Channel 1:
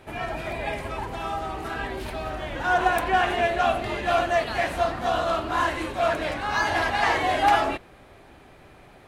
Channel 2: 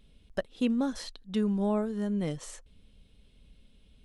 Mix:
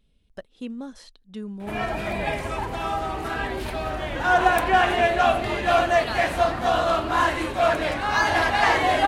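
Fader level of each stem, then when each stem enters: +3.0 dB, -6.5 dB; 1.60 s, 0.00 s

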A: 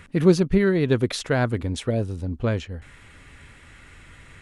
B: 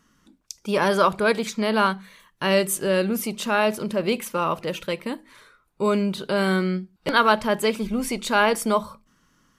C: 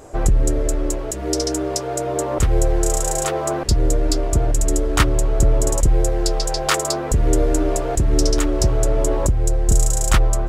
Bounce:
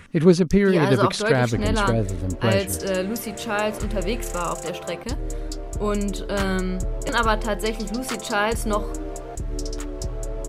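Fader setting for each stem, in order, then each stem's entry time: +1.5 dB, -3.0 dB, -12.5 dB; 0.00 s, 0.00 s, 1.40 s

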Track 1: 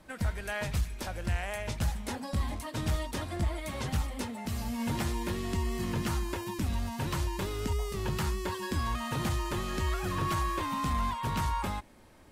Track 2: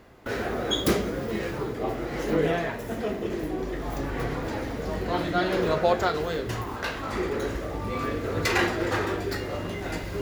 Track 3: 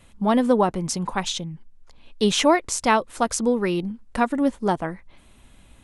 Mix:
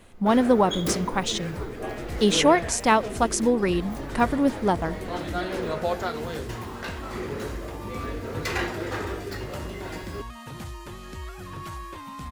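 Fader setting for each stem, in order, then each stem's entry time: -6.5 dB, -4.5 dB, -0.5 dB; 1.35 s, 0.00 s, 0.00 s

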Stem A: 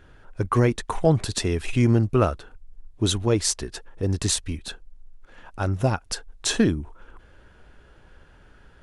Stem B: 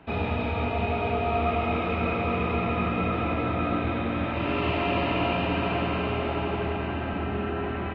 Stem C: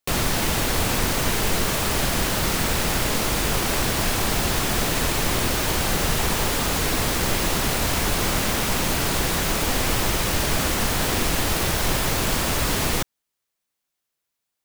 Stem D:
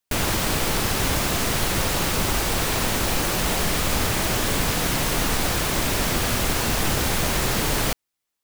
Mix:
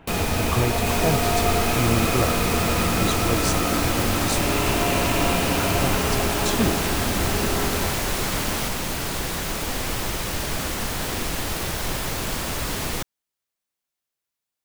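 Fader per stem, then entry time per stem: -5.0 dB, +2.0 dB, -4.5 dB, -6.0 dB; 0.00 s, 0.00 s, 0.00 s, 0.75 s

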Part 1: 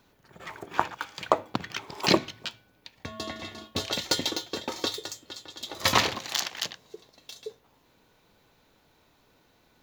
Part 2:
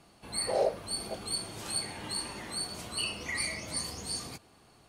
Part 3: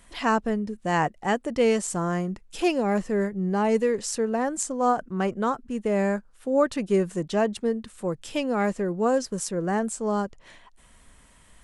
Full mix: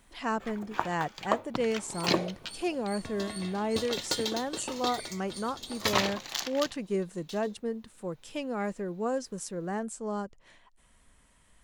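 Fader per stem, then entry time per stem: -5.0 dB, -12.0 dB, -8.0 dB; 0.00 s, 1.60 s, 0.00 s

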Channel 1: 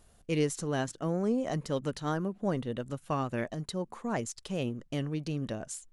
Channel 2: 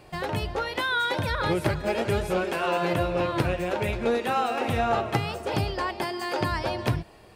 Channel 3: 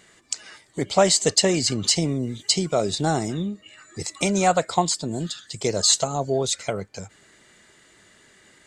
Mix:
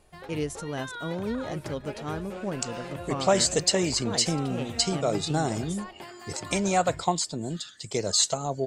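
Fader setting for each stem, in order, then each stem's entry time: -2.0 dB, -13.5 dB, -4.5 dB; 0.00 s, 0.00 s, 2.30 s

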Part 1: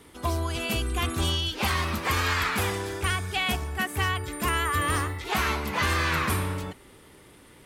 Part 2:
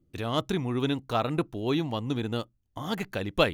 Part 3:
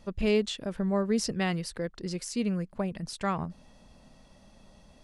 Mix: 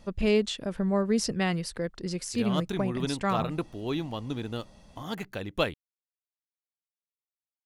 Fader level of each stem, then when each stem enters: mute, -4.0 dB, +1.5 dB; mute, 2.20 s, 0.00 s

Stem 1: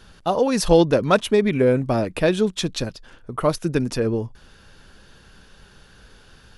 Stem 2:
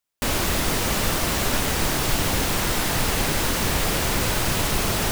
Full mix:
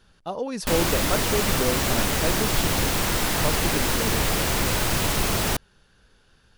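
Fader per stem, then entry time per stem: -10.0 dB, -0.5 dB; 0.00 s, 0.45 s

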